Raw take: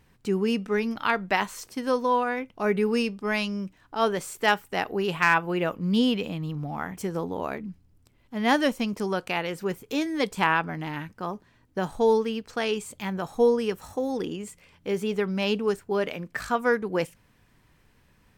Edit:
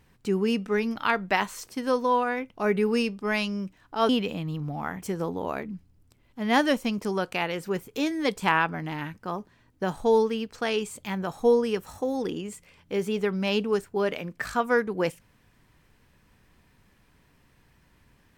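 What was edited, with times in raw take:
4.09–6.04 cut

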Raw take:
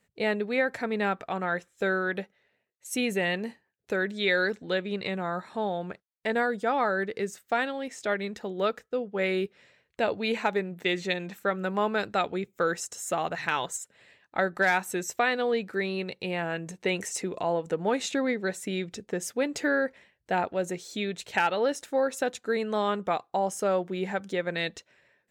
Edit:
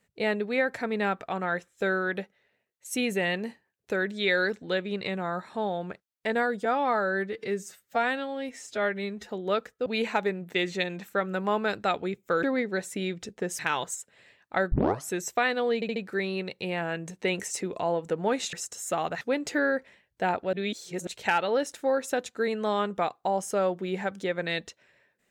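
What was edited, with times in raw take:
6.65–8.41 stretch 1.5×
8.98–10.16 cut
12.73–13.41 swap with 18.14–19.3
14.54 tape start 0.37 s
15.57 stutter 0.07 s, 4 plays
20.62–21.16 reverse

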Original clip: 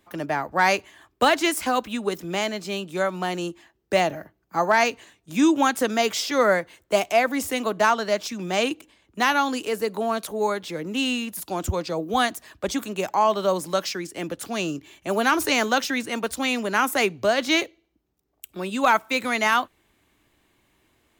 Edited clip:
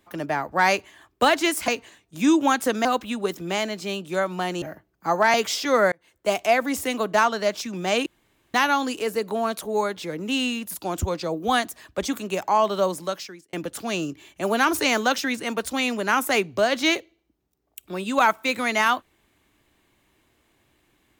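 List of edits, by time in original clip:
3.45–4.11 cut
4.83–6 move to 1.68
6.58–7.06 fade in
8.72–9.2 room tone
13.49–14.19 fade out

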